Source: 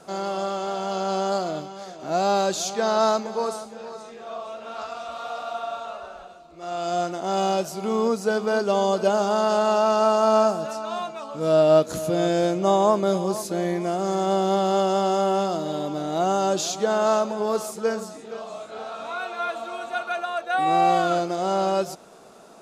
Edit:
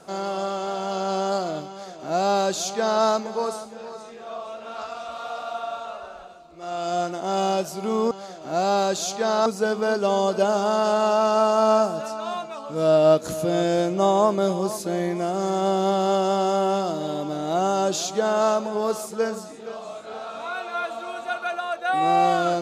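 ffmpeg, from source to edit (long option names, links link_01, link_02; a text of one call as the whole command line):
ffmpeg -i in.wav -filter_complex "[0:a]asplit=3[link_01][link_02][link_03];[link_01]atrim=end=8.112[link_04];[link_02]atrim=start=1.688:end=3.042[link_05];[link_03]atrim=start=8.108[link_06];[link_04][link_05]acrossfade=duration=0.004:curve1=hsin:curve2=hsin[link_07];[link_07][link_06]acrossfade=duration=0.004:curve1=hsin:curve2=hsin" out.wav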